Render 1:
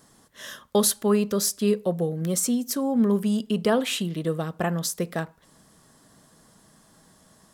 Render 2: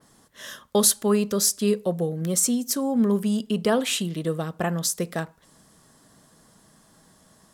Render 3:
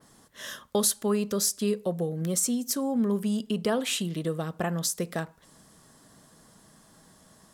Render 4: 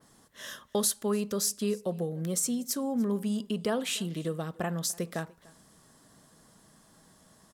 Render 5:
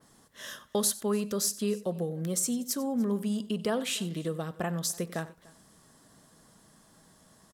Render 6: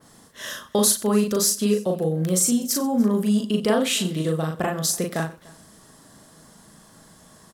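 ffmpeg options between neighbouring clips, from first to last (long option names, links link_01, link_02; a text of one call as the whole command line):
ffmpeg -i in.wav -af "adynamicequalizer=threshold=0.00794:dfrequency=7600:dqfactor=0.71:tfrequency=7600:tqfactor=0.71:attack=5:release=100:ratio=0.375:range=2.5:mode=boostabove:tftype=bell" out.wav
ffmpeg -i in.wav -af "acompressor=threshold=-31dB:ratio=1.5" out.wav
ffmpeg -i in.wav -af "aecho=1:1:294:0.0668,volume=-3dB" out.wav
ffmpeg -i in.wav -af "aecho=1:1:93:0.119" out.wav
ffmpeg -i in.wav -filter_complex "[0:a]asplit=2[link_01][link_02];[link_02]adelay=38,volume=-2.5dB[link_03];[link_01][link_03]amix=inputs=2:normalize=0,volume=7dB" out.wav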